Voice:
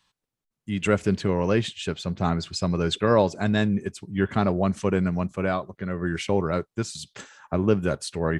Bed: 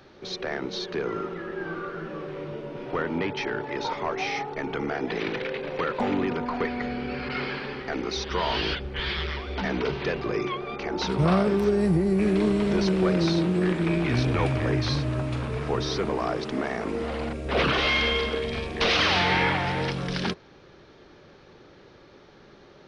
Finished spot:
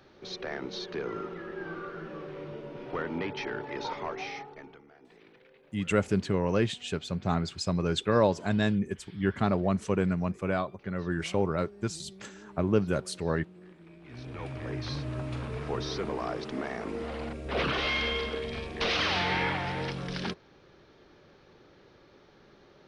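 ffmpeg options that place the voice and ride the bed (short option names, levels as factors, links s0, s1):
-filter_complex "[0:a]adelay=5050,volume=0.631[s0];[1:a]volume=6.68,afade=t=out:st=3.97:d=0.85:silence=0.0749894,afade=t=in:st=14.01:d=1.34:silence=0.0794328[s1];[s0][s1]amix=inputs=2:normalize=0"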